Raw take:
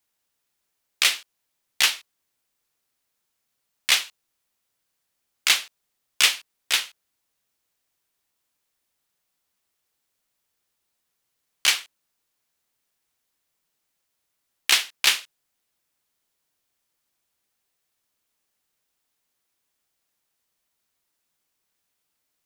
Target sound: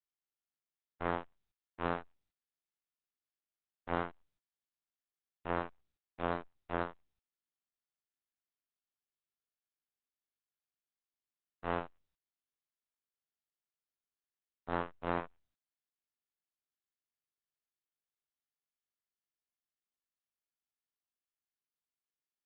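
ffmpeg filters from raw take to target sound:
-filter_complex "[0:a]afftfilt=real='hypot(re,im)*cos(PI*b)':imag='0':win_size=2048:overlap=0.75,agate=range=0.0126:threshold=0.00251:ratio=16:detection=peak,acrossover=split=160|990[s0][s1][s2];[s2]dynaudnorm=f=1000:g=11:m=2.24[s3];[s0][s1][s3]amix=inputs=3:normalize=0,aeval=exprs='abs(val(0))':c=same,lowpass=1600,lowshelf=f=75:g=-4.5,areverse,acompressor=threshold=0.0158:ratio=16,areverse,lowshelf=f=210:g=-4,volume=2.66" -ar 48000 -c:a libopus -b:a 8k

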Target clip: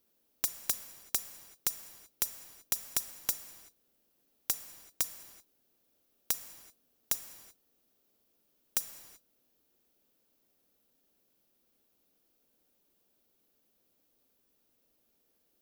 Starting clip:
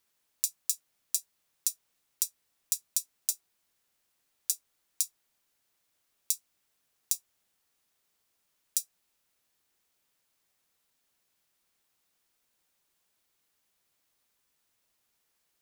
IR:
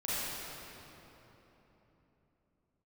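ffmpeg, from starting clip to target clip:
-filter_complex "[0:a]equalizer=f=125:t=o:w=1:g=-4,equalizer=f=250:t=o:w=1:g=7,equalizer=f=500:t=o:w=1:g=4,equalizer=f=1000:t=o:w=1:g=-7,equalizer=f=2000:t=o:w=1:g=-9,equalizer=f=4000:t=o:w=1:g=-4,equalizer=f=8000:t=o:w=1:g=-10,aeval=exprs='(mod(7.94*val(0)+1,2)-1)/7.94':c=same,asplit=2[s0][s1];[1:a]atrim=start_sample=2205,afade=t=out:st=0.44:d=0.01,atrim=end_sample=19845[s2];[s1][s2]afir=irnorm=-1:irlink=0,volume=0.178[s3];[s0][s3]amix=inputs=2:normalize=0,volume=1.68"

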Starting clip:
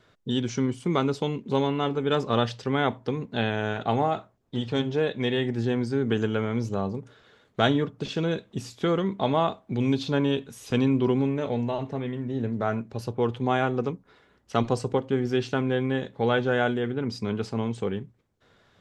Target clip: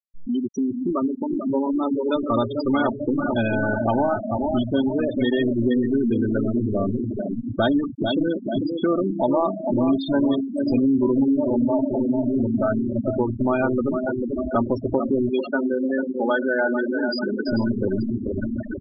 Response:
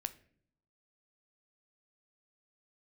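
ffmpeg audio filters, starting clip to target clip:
-filter_complex "[0:a]aeval=exprs='val(0)+0.5*0.0335*sgn(val(0))':c=same,aecho=1:1:3.3:0.68,aecho=1:1:442|884|1326|1768|2210|2652|3094:0.447|0.259|0.15|0.0872|0.0505|0.0293|0.017,dynaudnorm=f=130:g=31:m=3.16,asettb=1/sr,asplit=3[s0][s1][s2];[s0]atrim=end=15.294[s3];[s1]atrim=start=15.29:end=17.47,asetpts=PTS-STARTPTS,afade=t=in:d=0.004:c=qsin,afade=t=out:st=2.176:d=0.004:c=qsin,lowshelf=f=230:g=-11.5[s4];[s2]atrim=start=17.466[s5];[s3][s4]acrossfade=d=0.004:c1=hsin:c2=qsin[s6];[s6][s5]acrossfade=d=0.004:c1=qsin:c2=hsin,afftfilt=real='re*gte(hypot(re,im),0.282)':imag='im*gte(hypot(re,im),0.282)':win_size=1024:overlap=0.75,acompressor=threshold=0.0501:ratio=2,highshelf=f=6400:g=-11.5,volume=1.33"

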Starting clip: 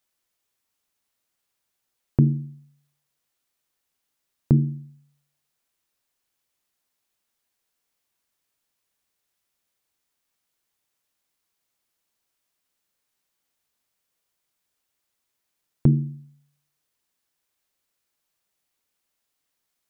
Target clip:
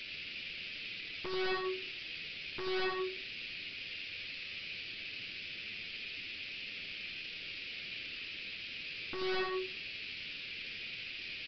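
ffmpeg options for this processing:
-filter_complex "[0:a]acrossover=split=220[s0][s1];[s0]acompressor=threshold=0.02:ratio=8[s2];[s1]highpass=f=960:t=q:w=4.9[s3];[s2][s3]amix=inputs=2:normalize=0,asetrate=66075,aresample=44100,atempo=0.66742,aeval=exprs='(tanh(316*val(0)+0.3)-tanh(0.3))/316':c=same,acontrast=79,aeval=exprs='0.00944*(cos(1*acos(clip(val(0)/0.00944,-1,1)))-cos(1*PI/2))+0.00422*(cos(5*acos(clip(val(0)/0.00944,-1,1)))-cos(5*PI/2))':c=same,aeval=exprs='0.00944*sin(PI/2*3.55*val(0)/0.00944)':c=same,asplit=2[s4][s5];[s5]aecho=0:1:144:0.668[s6];[s4][s6]amix=inputs=2:normalize=0,asetrate=76440,aresample=44100,aresample=11025,aresample=44100,volume=2.37"

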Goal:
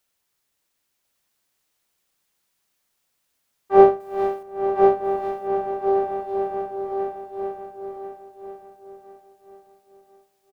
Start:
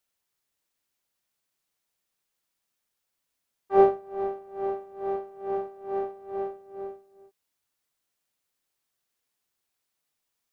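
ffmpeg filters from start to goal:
-filter_complex "[0:a]asettb=1/sr,asplit=3[s0][s1][s2];[s0]atrim=end=4.004[s3];[s1]atrim=start=4:end=4.43,asetpts=PTS-STARTPTS,afade=t=in:d=0.004:c=qsin,afade=t=out:st=0.426:d=0.004:c=qsin,highshelf=f=2400:g=11[s4];[s2]atrim=start=4.426[s5];[s3][s4]acrossfade=d=0.004:c1=hsin:c2=qsin[s6];[s6][s5]acrossfade=d=0.004:c1=qsin:c2=hsin,asplit=2[s7][s8];[s8]aecho=0:1:1042|2084|3126|4168:0.631|0.221|0.0773|0.0271[s9];[s7][s9]amix=inputs=2:normalize=0,volume=2.11"

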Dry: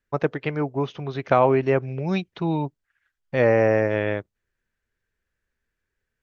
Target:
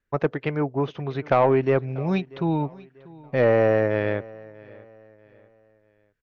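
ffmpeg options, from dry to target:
-af "highshelf=f=5000:g=-11,asoftclip=type=tanh:threshold=0.335,aecho=1:1:640|1280|1920:0.0794|0.0294|0.0109,volume=1.12"

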